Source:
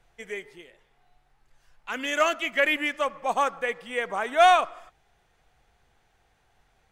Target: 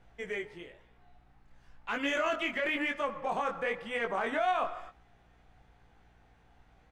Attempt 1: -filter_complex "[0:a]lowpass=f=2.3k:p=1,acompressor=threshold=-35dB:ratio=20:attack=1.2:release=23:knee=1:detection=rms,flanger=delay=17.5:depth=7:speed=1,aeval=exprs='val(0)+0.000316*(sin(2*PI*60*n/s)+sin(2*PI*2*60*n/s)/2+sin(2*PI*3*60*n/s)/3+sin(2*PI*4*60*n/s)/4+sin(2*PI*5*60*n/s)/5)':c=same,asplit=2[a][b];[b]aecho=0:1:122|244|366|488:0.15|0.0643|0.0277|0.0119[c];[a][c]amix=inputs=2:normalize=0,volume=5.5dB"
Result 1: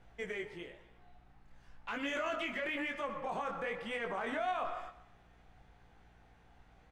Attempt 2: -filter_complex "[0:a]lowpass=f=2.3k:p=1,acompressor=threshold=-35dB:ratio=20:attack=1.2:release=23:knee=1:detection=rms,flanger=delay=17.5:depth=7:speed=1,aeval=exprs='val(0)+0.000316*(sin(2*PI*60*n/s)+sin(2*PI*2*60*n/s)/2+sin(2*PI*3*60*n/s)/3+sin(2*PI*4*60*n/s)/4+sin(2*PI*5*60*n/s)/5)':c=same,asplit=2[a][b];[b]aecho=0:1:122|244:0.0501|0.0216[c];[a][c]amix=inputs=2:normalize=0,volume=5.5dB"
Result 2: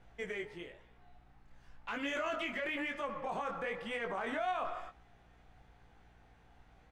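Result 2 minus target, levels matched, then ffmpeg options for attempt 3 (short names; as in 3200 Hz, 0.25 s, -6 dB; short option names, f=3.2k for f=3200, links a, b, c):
compressor: peak gain reduction +6 dB
-filter_complex "[0:a]lowpass=f=2.3k:p=1,acompressor=threshold=-28.5dB:ratio=20:attack=1.2:release=23:knee=1:detection=rms,flanger=delay=17.5:depth=7:speed=1,aeval=exprs='val(0)+0.000316*(sin(2*PI*60*n/s)+sin(2*PI*2*60*n/s)/2+sin(2*PI*3*60*n/s)/3+sin(2*PI*4*60*n/s)/4+sin(2*PI*5*60*n/s)/5)':c=same,asplit=2[a][b];[b]aecho=0:1:122|244:0.0501|0.0216[c];[a][c]amix=inputs=2:normalize=0,volume=5.5dB"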